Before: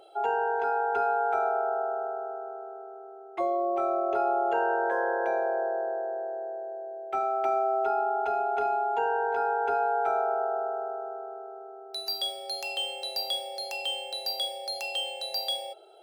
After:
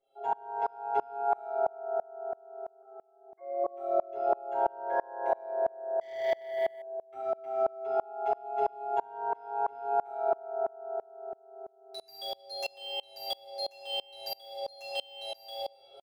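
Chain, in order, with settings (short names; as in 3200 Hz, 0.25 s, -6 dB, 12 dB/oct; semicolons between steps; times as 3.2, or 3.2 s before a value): 2.82–3.64 rippled Chebyshev low-pass 2200 Hz, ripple 9 dB; comb 7.4 ms, depth 99%; reverb RT60 1.8 s, pre-delay 3 ms, DRR -2 dB; 6.01–6.82 sample leveller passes 3; low shelf 110 Hz +9.5 dB; dB-ramp tremolo swelling 3 Hz, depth 29 dB; gain -7.5 dB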